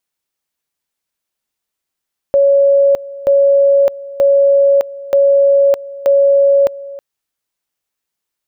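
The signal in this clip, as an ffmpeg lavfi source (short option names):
-f lavfi -i "aevalsrc='pow(10,(-6.5-19*gte(mod(t,0.93),0.61))/20)*sin(2*PI*558*t)':d=4.65:s=44100"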